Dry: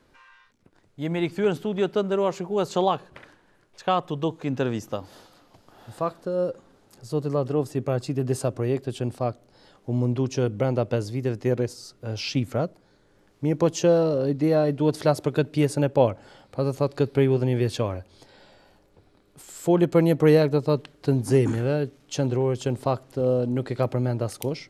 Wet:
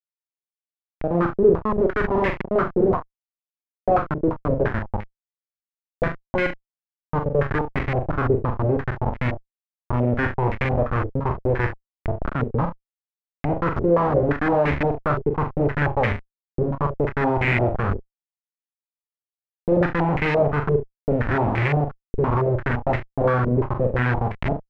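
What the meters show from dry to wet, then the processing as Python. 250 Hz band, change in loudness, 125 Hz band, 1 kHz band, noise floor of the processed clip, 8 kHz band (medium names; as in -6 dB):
+0.5 dB, +2.0 dB, +2.5 dB, +6.5 dB, under -85 dBFS, under -20 dB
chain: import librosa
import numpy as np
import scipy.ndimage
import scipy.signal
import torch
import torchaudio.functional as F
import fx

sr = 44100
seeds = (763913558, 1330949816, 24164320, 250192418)

p1 = fx.rattle_buzz(x, sr, strikes_db=-21.0, level_db=-12.0)
p2 = fx.low_shelf(p1, sr, hz=210.0, db=6.5)
p3 = fx.leveller(p2, sr, passes=1)
p4 = fx.vibrato(p3, sr, rate_hz=0.66, depth_cents=12.0)
p5 = fx.schmitt(p4, sr, flips_db=-18.0)
p6 = p5 + fx.room_early_taps(p5, sr, ms=(41, 70), db=(-5.5, -13.5), dry=0)
p7 = fx.filter_held_lowpass(p6, sr, hz=5.8, low_hz=430.0, high_hz=2100.0)
y = p7 * 10.0 ** (-3.5 / 20.0)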